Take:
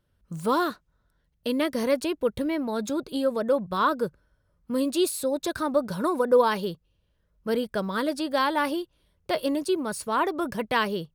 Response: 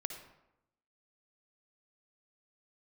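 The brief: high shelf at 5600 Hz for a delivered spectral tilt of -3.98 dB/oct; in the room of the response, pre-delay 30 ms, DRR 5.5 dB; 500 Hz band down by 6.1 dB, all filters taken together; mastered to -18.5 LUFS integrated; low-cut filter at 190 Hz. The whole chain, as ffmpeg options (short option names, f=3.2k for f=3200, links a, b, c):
-filter_complex "[0:a]highpass=190,equalizer=f=500:t=o:g=-7,highshelf=f=5.6k:g=-4.5,asplit=2[a][b];[1:a]atrim=start_sample=2205,adelay=30[c];[b][c]afir=irnorm=-1:irlink=0,volume=-5dB[d];[a][d]amix=inputs=2:normalize=0,volume=10.5dB"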